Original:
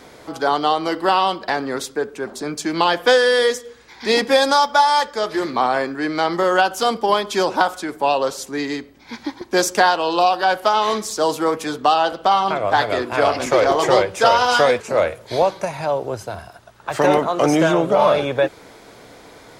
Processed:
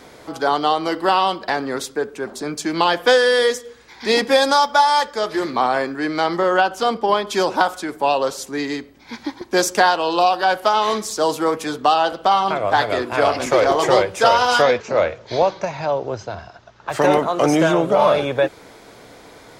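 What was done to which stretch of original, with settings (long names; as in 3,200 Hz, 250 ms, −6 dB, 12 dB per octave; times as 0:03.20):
0:06.38–0:07.27: high-shelf EQ 6,000 Hz −12 dB
0:14.62–0:16.89: Butterworth low-pass 6,600 Hz 48 dB per octave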